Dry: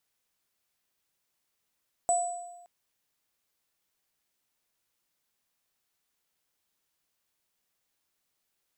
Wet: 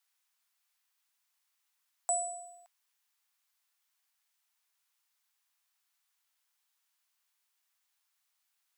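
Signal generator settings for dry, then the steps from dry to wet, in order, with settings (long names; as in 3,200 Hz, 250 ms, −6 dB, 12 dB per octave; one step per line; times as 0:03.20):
inharmonic partials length 0.57 s, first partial 703 Hz, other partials 7,920 Hz, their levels −4.5 dB, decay 1.14 s, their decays 0.86 s, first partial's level −21.5 dB
high-pass filter 830 Hz 24 dB per octave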